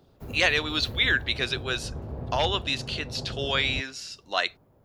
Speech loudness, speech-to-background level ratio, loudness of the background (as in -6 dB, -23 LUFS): -26.5 LUFS, 11.0 dB, -37.5 LUFS